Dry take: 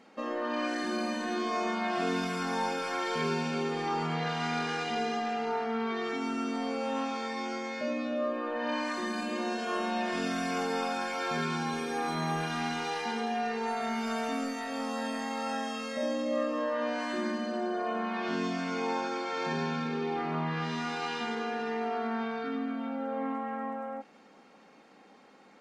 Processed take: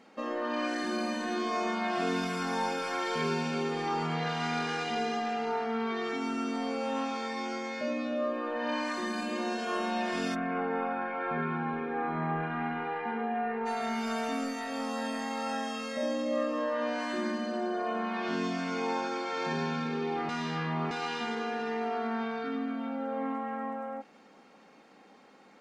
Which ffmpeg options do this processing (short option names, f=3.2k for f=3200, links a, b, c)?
-filter_complex "[0:a]asplit=3[a][b][c];[a]afade=t=out:st=10.34:d=0.02[d];[b]lowpass=f=2.1k:w=0.5412,lowpass=f=2.1k:w=1.3066,afade=t=in:st=10.34:d=0.02,afade=t=out:st=13.65:d=0.02[e];[c]afade=t=in:st=13.65:d=0.02[f];[d][e][f]amix=inputs=3:normalize=0,asplit=3[g][h][i];[g]atrim=end=20.292[j];[h]atrim=start=20.288:end=20.912,asetpts=PTS-STARTPTS,areverse[k];[i]atrim=start=20.908[l];[j][k]acrossfade=d=0.004:c1=hsin:c2=hsin[m];[m][l]acrossfade=d=0.004:c1=hsin:c2=hsin"